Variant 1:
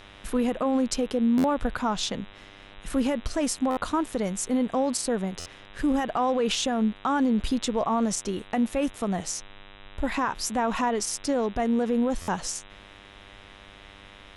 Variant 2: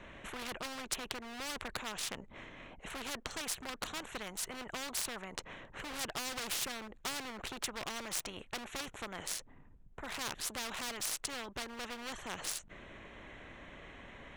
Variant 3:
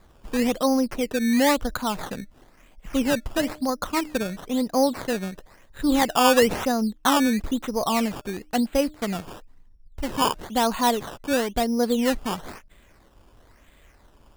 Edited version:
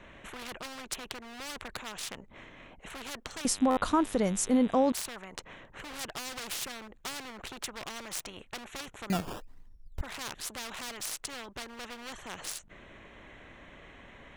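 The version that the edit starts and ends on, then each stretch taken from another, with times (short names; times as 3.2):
2
3.45–4.92 from 1
9.1–10.01 from 3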